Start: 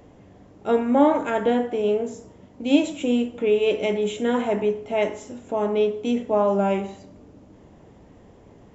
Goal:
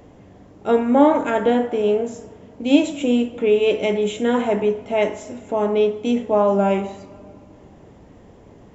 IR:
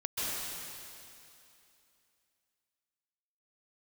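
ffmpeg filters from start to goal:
-filter_complex "[0:a]asplit=2[a][b];[1:a]atrim=start_sample=2205,lowpass=2.8k[c];[b][c]afir=irnorm=-1:irlink=0,volume=-26dB[d];[a][d]amix=inputs=2:normalize=0,volume=3dB"

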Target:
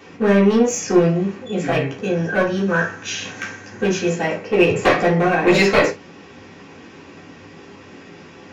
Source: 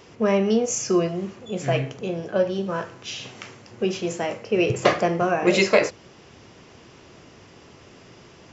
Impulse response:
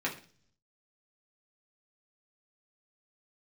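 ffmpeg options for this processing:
-filter_complex "[0:a]asettb=1/sr,asplit=3[a][b][c];[a]atrim=end=2.024[d];[b]atrim=start=2.02:end=4.09,asetpts=PTS-STARTPTS,afade=t=in:d=0.004:c=qsin,afade=t=out:st=2.066:d=0.004:c=qsin,equalizer=f=100:t=o:w=0.33:g=4,equalizer=f=1.6k:t=o:w=0.33:g=10,equalizer=f=6.3k:t=o:w=0.33:g=11[e];[c]atrim=start=4.086[f];[d][e]acrossfade=d=0.004:c1=hsin:c2=qsin[g];[g][f]acrossfade=d=0.004:c1=qsin:c2=hsin,aeval=exprs='clip(val(0),-1,0.106)':c=same[h];[1:a]atrim=start_sample=2205,atrim=end_sample=3087[i];[h][i]afir=irnorm=-1:irlink=0,volume=1.5dB"

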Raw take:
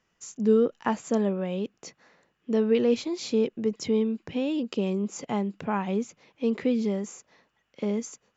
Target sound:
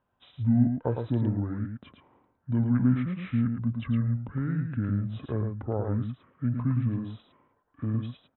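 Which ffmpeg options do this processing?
-filter_complex "[0:a]lowpass=3.5k,asetrate=23361,aresample=44100,atempo=1.88775,asplit=2[a][b];[b]aecho=0:1:110:0.531[c];[a][c]amix=inputs=2:normalize=0,volume=-2dB"

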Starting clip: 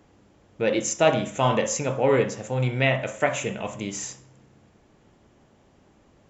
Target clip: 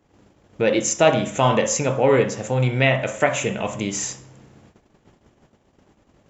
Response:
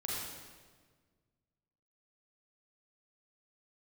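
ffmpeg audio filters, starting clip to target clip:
-filter_complex "[0:a]agate=range=-15dB:threshold=-56dB:ratio=16:detection=peak,asplit=2[a][b];[b]acompressor=threshold=-29dB:ratio=6,volume=-2dB[c];[a][c]amix=inputs=2:normalize=0,volume=2dB"

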